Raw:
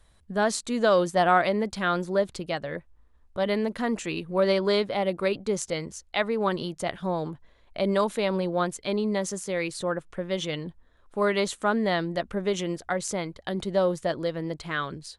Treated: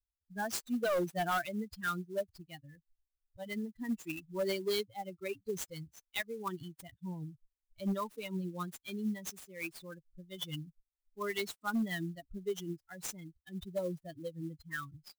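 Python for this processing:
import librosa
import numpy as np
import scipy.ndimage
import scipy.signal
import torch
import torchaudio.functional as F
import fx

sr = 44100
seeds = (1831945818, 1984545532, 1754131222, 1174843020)

y = fx.bin_expand(x, sr, power=3.0)
y = fx.peak_eq(y, sr, hz=690.0, db=-6.5, octaves=2.0)
y = np.clip(10.0 ** (27.5 / 20.0) * y, -1.0, 1.0) / 10.0 ** (27.5 / 20.0)
y = fx.clock_jitter(y, sr, seeds[0], jitter_ms=0.02)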